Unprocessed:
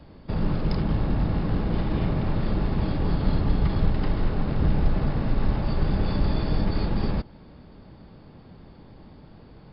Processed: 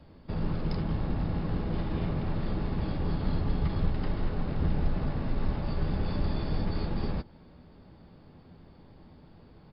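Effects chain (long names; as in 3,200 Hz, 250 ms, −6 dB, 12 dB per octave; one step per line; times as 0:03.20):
double-tracking delay 12 ms −11.5 dB
level −6 dB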